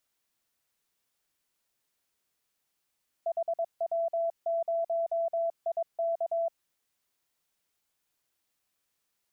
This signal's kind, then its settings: Morse "HW0IK" 22 wpm 669 Hz -26 dBFS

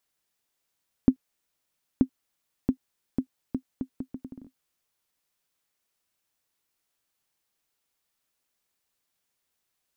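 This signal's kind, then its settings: bouncing ball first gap 0.93 s, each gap 0.73, 260 Hz, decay 82 ms -6.5 dBFS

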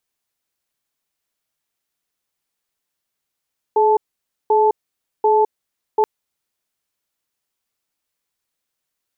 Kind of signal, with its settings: cadence 426 Hz, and 872 Hz, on 0.21 s, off 0.53 s, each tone -14 dBFS 2.28 s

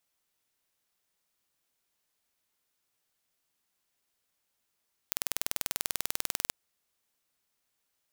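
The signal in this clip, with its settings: pulse train 20.3/s, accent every 0, -2.5 dBFS 1.39 s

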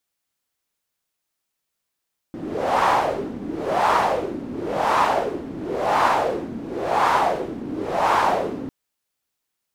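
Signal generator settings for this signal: wind-like swept noise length 6.35 s, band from 260 Hz, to 980 Hz, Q 3.2, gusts 6, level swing 14 dB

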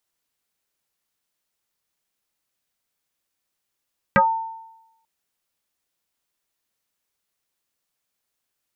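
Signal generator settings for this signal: FM tone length 0.89 s, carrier 900 Hz, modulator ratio 0.39, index 4, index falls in 0.16 s exponential, decay 0.93 s, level -10 dB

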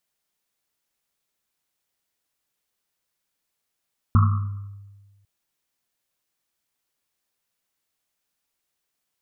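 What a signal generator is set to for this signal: Risset drum, pitch 100 Hz, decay 1.44 s, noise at 1200 Hz, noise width 270 Hz, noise 20%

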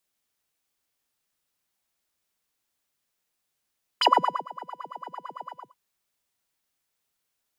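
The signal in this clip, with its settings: synth patch with filter wobble B5, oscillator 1 square, noise -10.5 dB, filter bandpass, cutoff 400 Hz, Q 10, filter envelope 2 oct, filter decay 0.14 s, filter sustain 20%, attack 4.6 ms, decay 0.42 s, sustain -21.5 dB, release 0.25 s, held 1.48 s, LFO 8.9 Hz, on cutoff 1.8 oct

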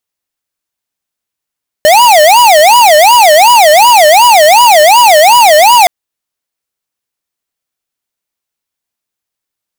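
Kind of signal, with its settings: siren wail 599–980 Hz 2.7/s square -3.5 dBFS 4.02 s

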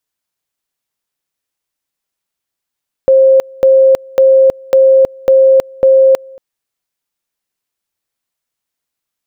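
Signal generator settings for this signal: two-level tone 532 Hz -3.5 dBFS, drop 27 dB, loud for 0.32 s, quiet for 0.23 s, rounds 6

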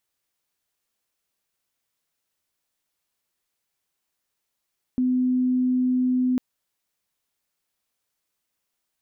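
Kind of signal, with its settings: tone sine 253 Hz -18.5 dBFS 1.40 s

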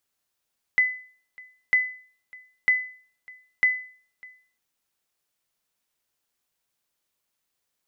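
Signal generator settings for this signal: sonar ping 2010 Hz, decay 0.46 s, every 0.95 s, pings 4, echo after 0.60 s, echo -25 dB -12.5 dBFS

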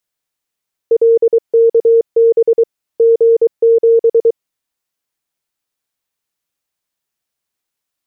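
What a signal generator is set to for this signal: Morse "LKB G7" 23 wpm 459 Hz -5.5 dBFS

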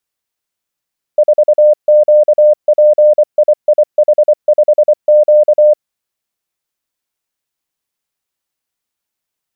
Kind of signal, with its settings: Morse "4QPIIH5Q" 24 wpm 602 Hz -3.5 dBFS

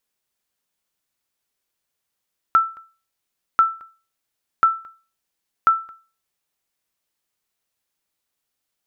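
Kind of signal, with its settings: sonar ping 1330 Hz, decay 0.35 s, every 1.04 s, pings 4, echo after 0.22 s, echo -26 dB -7 dBFS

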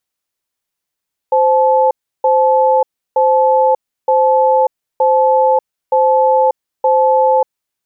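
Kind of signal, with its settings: cadence 521 Hz, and 865 Hz, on 0.59 s, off 0.33 s, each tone -11 dBFS 6.24 s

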